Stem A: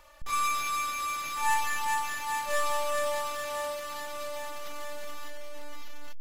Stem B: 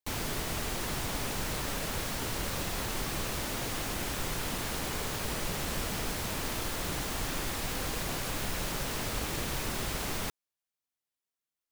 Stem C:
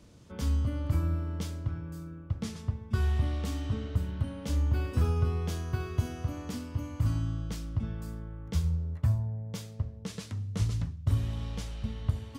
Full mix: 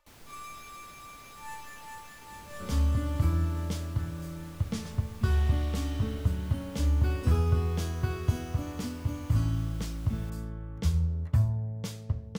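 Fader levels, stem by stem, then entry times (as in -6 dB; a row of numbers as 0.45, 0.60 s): -16.0, -19.5, +2.0 dB; 0.00, 0.00, 2.30 s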